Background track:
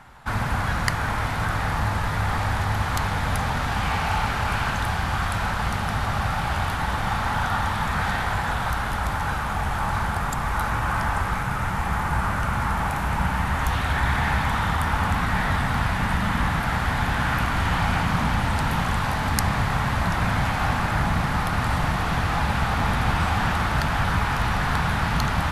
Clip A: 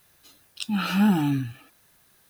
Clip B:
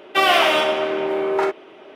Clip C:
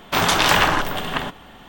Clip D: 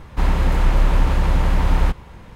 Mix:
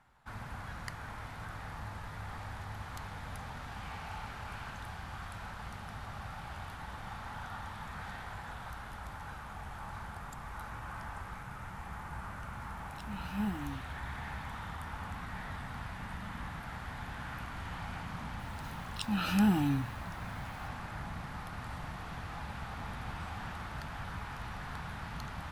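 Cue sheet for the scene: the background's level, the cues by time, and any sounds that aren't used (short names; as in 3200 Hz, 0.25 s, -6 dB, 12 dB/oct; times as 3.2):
background track -19 dB
12.38 add A -14.5 dB + upward expander, over -31 dBFS
18.39 add A -6.5 dB
not used: B, C, D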